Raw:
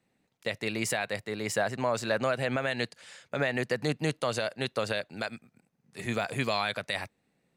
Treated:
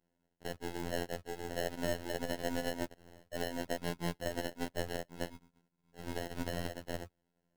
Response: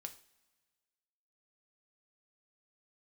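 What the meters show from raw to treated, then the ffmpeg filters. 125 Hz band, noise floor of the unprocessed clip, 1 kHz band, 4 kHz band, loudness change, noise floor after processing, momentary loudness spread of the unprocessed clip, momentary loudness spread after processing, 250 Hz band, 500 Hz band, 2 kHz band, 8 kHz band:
-8.0 dB, -76 dBFS, -9.0 dB, -9.0 dB, -8.5 dB, -82 dBFS, 9 LU, 8 LU, -5.5 dB, -8.0 dB, -12.0 dB, -8.0 dB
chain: -af "aeval=exprs='if(lt(val(0),0),0.447*val(0),val(0))':c=same,acrusher=samples=37:mix=1:aa=0.000001,afftfilt=real='hypot(re,im)*cos(PI*b)':imag='0':win_size=2048:overlap=0.75,volume=0.794"

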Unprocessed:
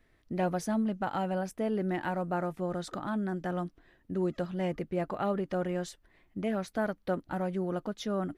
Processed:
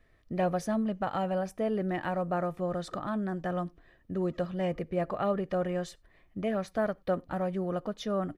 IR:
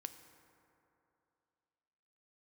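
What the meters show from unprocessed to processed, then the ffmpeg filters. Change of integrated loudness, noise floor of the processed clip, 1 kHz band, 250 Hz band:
+1.0 dB, -64 dBFS, +1.0 dB, 0.0 dB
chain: -filter_complex "[0:a]highshelf=f=4400:g=-5.5,aecho=1:1:1.7:0.31,asplit=2[s0][s1];[1:a]atrim=start_sample=2205,afade=t=out:st=0.15:d=0.01,atrim=end_sample=7056[s2];[s1][s2]afir=irnorm=-1:irlink=0,volume=0.501[s3];[s0][s3]amix=inputs=2:normalize=0,volume=0.891"

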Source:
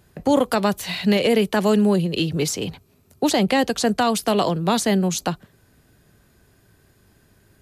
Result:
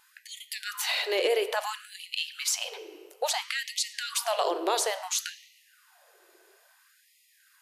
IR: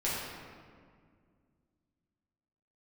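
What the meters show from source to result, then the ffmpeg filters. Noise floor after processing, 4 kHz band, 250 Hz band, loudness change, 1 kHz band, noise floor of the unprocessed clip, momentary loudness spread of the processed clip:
-64 dBFS, -3.5 dB, -25.5 dB, -9.0 dB, -9.0 dB, -59 dBFS, 14 LU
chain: -filter_complex "[0:a]alimiter=limit=0.141:level=0:latency=1:release=132,asplit=2[s0][s1];[1:a]atrim=start_sample=2205,asetrate=48510,aresample=44100[s2];[s1][s2]afir=irnorm=-1:irlink=0,volume=0.178[s3];[s0][s3]amix=inputs=2:normalize=0,afftfilt=real='re*gte(b*sr/1024,300*pow(1900/300,0.5+0.5*sin(2*PI*0.59*pts/sr)))':imag='im*gte(b*sr/1024,300*pow(1900/300,0.5+0.5*sin(2*PI*0.59*pts/sr)))':win_size=1024:overlap=0.75"

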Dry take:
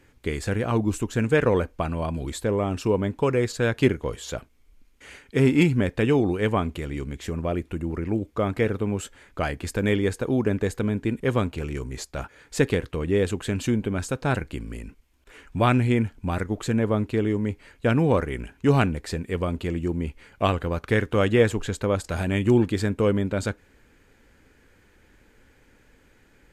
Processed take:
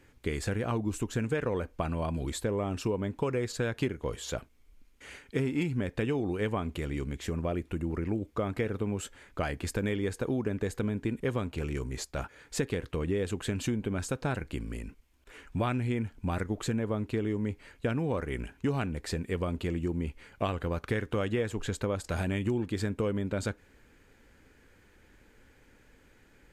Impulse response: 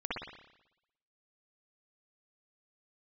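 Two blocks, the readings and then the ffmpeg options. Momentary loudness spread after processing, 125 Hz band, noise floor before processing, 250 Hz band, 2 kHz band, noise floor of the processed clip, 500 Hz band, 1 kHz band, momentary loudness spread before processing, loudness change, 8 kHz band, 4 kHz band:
6 LU, -7.5 dB, -59 dBFS, -8.0 dB, -8.0 dB, -61 dBFS, -8.5 dB, -8.5 dB, 11 LU, -8.0 dB, -4.0 dB, -6.5 dB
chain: -af "acompressor=threshold=0.0631:ratio=6,volume=0.75"

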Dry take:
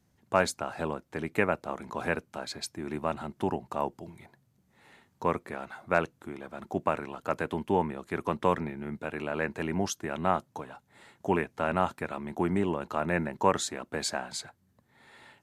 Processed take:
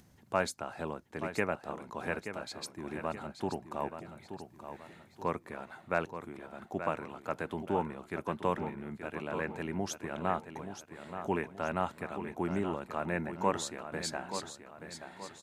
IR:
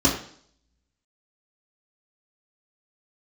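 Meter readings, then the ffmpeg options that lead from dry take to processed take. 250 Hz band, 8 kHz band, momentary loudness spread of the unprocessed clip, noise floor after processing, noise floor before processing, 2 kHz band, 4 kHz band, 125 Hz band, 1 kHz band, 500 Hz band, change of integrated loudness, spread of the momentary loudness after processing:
-5.0 dB, -5.0 dB, 11 LU, -60 dBFS, -70 dBFS, -5.0 dB, -5.0 dB, -5.0 dB, -5.0 dB, -5.0 dB, -5.5 dB, 13 LU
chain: -af "acompressor=mode=upward:threshold=0.00562:ratio=2.5,aecho=1:1:878|1756|2634|3512:0.335|0.137|0.0563|0.0231,volume=0.531"

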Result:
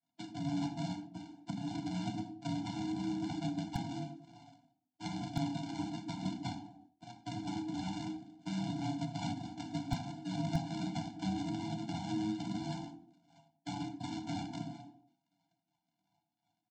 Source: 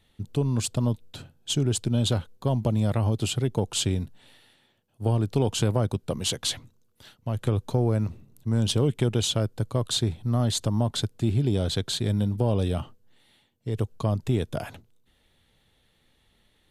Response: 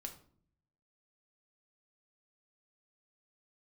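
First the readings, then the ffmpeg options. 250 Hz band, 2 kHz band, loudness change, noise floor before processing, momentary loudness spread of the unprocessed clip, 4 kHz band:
-8.0 dB, -8.5 dB, -13.0 dB, -67 dBFS, 9 LU, -16.5 dB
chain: -filter_complex "[0:a]highshelf=f=3500:t=q:w=1.5:g=12,aecho=1:1:30|66:0.447|0.133,aresample=16000,acrusher=samples=28:mix=1:aa=0.000001:lfo=1:lforange=28:lforate=2.9,aresample=44100,acompressor=threshold=0.0501:ratio=6,agate=range=0.0224:threshold=0.00316:ratio=3:detection=peak,flanger=delay=6:depth=4:regen=57:speed=0.21:shape=triangular,equalizer=f=160:t=o:w=0.67:g=-7,equalizer=f=1000:t=o:w=0.67:g=-12,equalizer=f=4000:t=o:w=0.67:g=7[s0];[1:a]atrim=start_sample=2205,afade=t=out:st=0.44:d=0.01,atrim=end_sample=19845[s1];[s0][s1]afir=irnorm=-1:irlink=0,aeval=exprs='val(0)*sin(2*PI*420*n/s)':c=same,acrossover=split=350[s2][s3];[s3]acompressor=threshold=0.002:ratio=2[s4];[s2][s4]amix=inputs=2:normalize=0,acrossover=split=110[s5][s6];[s5]acrusher=bits=6:mix=0:aa=0.000001[s7];[s7][s6]amix=inputs=2:normalize=0,afftfilt=real='re*eq(mod(floor(b*sr/1024/340),2),0)':imag='im*eq(mod(floor(b*sr/1024/340),2),0)':win_size=1024:overlap=0.75,volume=3.55"

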